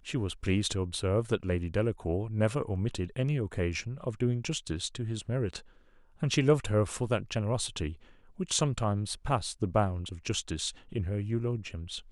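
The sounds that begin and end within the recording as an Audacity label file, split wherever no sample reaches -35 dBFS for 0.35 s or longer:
6.220000	7.920000	sound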